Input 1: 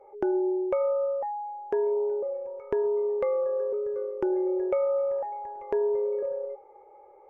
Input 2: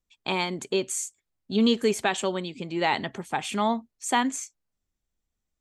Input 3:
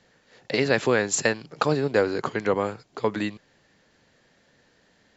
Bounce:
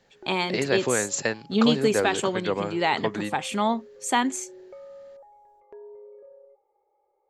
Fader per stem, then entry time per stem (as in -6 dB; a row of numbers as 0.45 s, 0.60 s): -18.5 dB, +1.0 dB, -3.5 dB; 0.00 s, 0.00 s, 0.00 s